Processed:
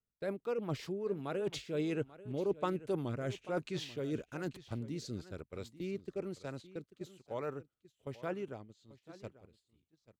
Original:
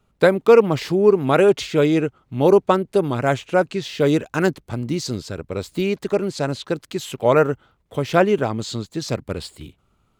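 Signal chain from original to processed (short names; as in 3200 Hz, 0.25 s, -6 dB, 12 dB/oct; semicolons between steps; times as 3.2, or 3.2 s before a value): Doppler pass-by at 2.48, 10 m/s, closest 2.3 m; gate -51 dBFS, range -13 dB; reverse; compressor 5:1, threshold -41 dBFS, peak gain reduction 27.5 dB; reverse; rotary speaker horn 5.5 Hz, later 1.1 Hz, at 1.02; echo 0.839 s -17 dB; gain +8 dB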